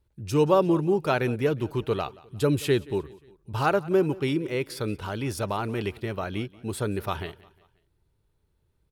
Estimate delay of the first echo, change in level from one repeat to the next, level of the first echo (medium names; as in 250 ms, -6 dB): 178 ms, -6.5 dB, -22.0 dB